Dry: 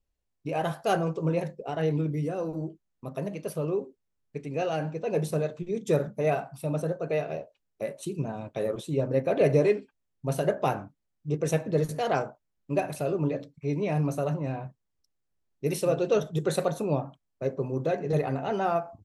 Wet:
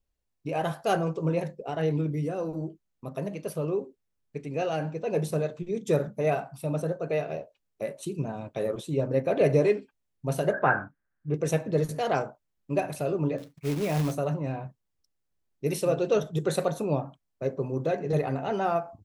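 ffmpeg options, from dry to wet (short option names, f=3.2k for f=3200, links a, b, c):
-filter_complex "[0:a]asettb=1/sr,asplit=3[a][b][c];[a]atrim=end=10.534[d];[b]atrim=start=10.53:end=11.34,asetpts=PTS-STARTPTS,afade=t=in:d=0.004:c=qsin,afade=t=out:st=0.806:d=0.004:c=qsin,lowpass=f=1.6k:t=q:w=9.6[e];[c]atrim=start=11.336[f];[d][e]acrossfade=d=0.004:c1=hsin:c2=qsin[g];[g][f]acrossfade=d=0.004:c1=qsin:c2=hsin,asettb=1/sr,asplit=3[h][i][j];[h]atrim=end=13.384[k];[i]atrim=start=13.38:end=14.15,asetpts=PTS-STARTPTS,afade=t=in:d=0.004:c=qsin,afade=t=out:st=0.766:d=0.004:c=qsin,acrusher=bits=3:mode=log:mix=0:aa=0.000001[l];[j]atrim=start=14.146[m];[k][l]acrossfade=d=0.004:c1=hsin:c2=qsin[n];[n][m]acrossfade=d=0.004:c1=qsin:c2=hsin"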